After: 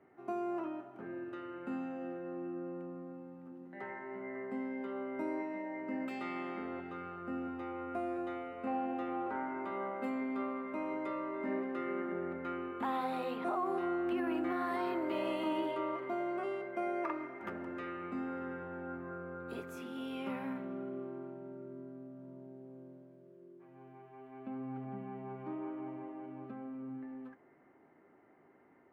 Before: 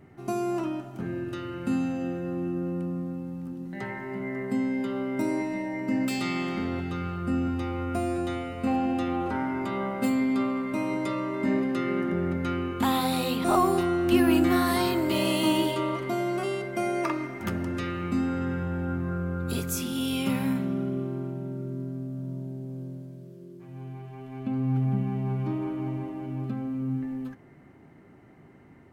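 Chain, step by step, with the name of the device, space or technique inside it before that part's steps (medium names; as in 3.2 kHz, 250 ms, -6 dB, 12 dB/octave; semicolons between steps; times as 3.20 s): DJ mixer with the lows and highs turned down (three-band isolator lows -20 dB, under 290 Hz, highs -22 dB, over 2.3 kHz; peak limiter -20.5 dBFS, peak gain reduction 8 dB); trim -6 dB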